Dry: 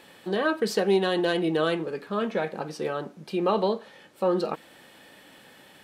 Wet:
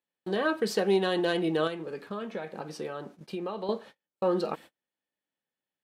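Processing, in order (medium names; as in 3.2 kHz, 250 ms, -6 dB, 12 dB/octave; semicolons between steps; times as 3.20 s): gate -43 dBFS, range -39 dB; 1.67–3.69 s: compression 5:1, threshold -30 dBFS, peak gain reduction 10.5 dB; trim -2.5 dB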